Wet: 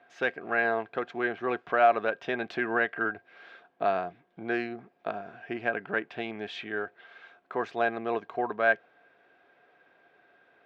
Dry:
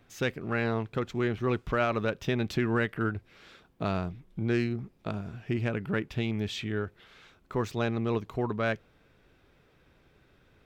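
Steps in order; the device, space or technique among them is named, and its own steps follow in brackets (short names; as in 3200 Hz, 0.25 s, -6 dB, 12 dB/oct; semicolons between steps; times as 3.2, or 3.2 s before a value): tin-can telephone (BPF 410–2700 Hz; small resonant body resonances 710/1600 Hz, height 14 dB, ringing for 65 ms); gain +2 dB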